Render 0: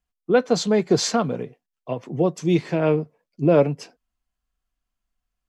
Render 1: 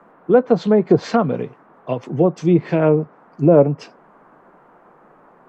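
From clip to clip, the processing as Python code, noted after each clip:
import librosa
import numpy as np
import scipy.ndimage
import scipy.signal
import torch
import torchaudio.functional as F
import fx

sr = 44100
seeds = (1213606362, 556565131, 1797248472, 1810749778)

y = fx.dmg_noise_band(x, sr, seeds[0], low_hz=150.0, high_hz=1300.0, level_db=-55.0)
y = fx.env_lowpass_down(y, sr, base_hz=1000.0, full_db=-14.0)
y = F.gain(torch.from_numpy(y), 5.0).numpy()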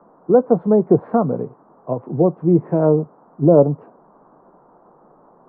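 y = scipy.signal.sosfilt(scipy.signal.butter(4, 1100.0, 'lowpass', fs=sr, output='sos'), x)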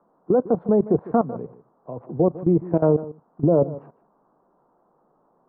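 y = fx.level_steps(x, sr, step_db=16)
y = y + 10.0 ** (-17.0 / 20.0) * np.pad(y, (int(152 * sr / 1000.0), 0))[:len(y)]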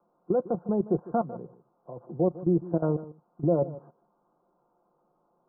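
y = scipy.signal.sosfilt(scipy.signal.ellip(4, 1.0, 40, 1500.0, 'lowpass', fs=sr, output='sos'), x)
y = y + 0.43 * np.pad(y, (int(5.7 * sr / 1000.0), 0))[:len(y)]
y = F.gain(torch.from_numpy(y), -7.5).numpy()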